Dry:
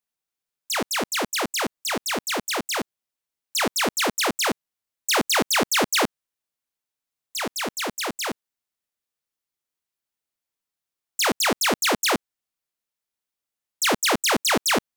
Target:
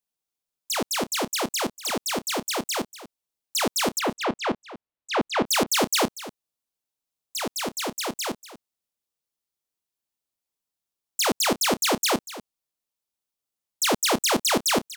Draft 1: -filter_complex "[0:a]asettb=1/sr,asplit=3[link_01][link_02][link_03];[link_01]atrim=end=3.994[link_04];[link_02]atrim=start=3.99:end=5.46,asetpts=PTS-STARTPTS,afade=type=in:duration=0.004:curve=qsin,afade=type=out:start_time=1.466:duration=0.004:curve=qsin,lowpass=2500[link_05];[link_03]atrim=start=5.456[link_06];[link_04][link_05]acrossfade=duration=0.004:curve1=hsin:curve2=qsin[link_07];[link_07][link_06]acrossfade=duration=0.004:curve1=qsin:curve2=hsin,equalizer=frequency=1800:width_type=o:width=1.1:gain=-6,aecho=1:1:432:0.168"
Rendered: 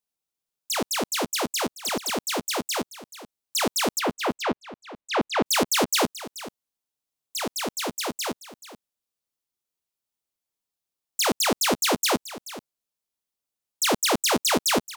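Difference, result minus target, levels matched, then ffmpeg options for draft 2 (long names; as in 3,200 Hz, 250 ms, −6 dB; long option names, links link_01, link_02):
echo 192 ms late
-filter_complex "[0:a]asettb=1/sr,asplit=3[link_01][link_02][link_03];[link_01]atrim=end=3.994[link_04];[link_02]atrim=start=3.99:end=5.46,asetpts=PTS-STARTPTS,afade=type=in:duration=0.004:curve=qsin,afade=type=out:start_time=1.466:duration=0.004:curve=qsin,lowpass=2500[link_05];[link_03]atrim=start=5.456[link_06];[link_04][link_05]acrossfade=duration=0.004:curve1=hsin:curve2=qsin[link_07];[link_07][link_06]acrossfade=duration=0.004:curve1=qsin:curve2=hsin,equalizer=frequency=1800:width_type=o:width=1.1:gain=-6,aecho=1:1:240:0.168"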